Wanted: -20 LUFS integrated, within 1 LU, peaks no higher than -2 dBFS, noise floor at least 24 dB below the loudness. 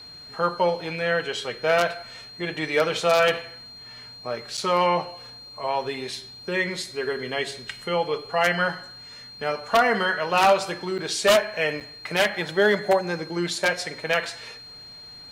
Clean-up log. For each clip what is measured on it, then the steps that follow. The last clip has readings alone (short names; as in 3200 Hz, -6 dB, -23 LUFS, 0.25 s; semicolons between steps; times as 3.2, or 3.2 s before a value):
dropouts 3; longest dropout 7.2 ms; steady tone 4200 Hz; tone level -41 dBFS; loudness -24.0 LUFS; peak -9.0 dBFS; loudness target -20.0 LUFS
-> interpolate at 4.57/10.98/11.8, 7.2 ms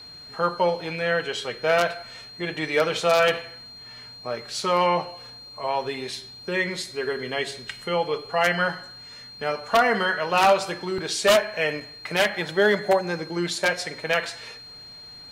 dropouts 0; steady tone 4200 Hz; tone level -41 dBFS
-> notch 4200 Hz, Q 30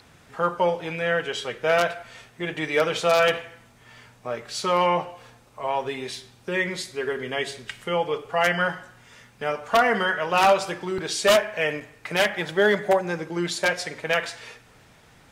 steady tone none; loudness -24.0 LUFS; peak -8.5 dBFS; loudness target -20.0 LUFS
-> gain +4 dB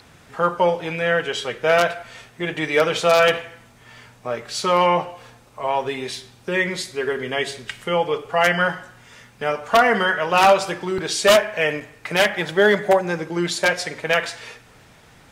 loudness -20.0 LUFS; peak -4.5 dBFS; noise floor -50 dBFS